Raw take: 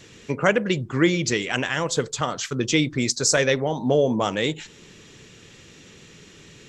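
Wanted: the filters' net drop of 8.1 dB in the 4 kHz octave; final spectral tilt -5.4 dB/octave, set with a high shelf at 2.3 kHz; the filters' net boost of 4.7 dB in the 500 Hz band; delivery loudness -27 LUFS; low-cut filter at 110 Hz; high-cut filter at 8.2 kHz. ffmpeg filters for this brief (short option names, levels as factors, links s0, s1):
-af "highpass=110,lowpass=8200,equalizer=f=500:t=o:g=6,highshelf=f=2300:g=-7,equalizer=f=4000:t=o:g=-4,volume=0.501"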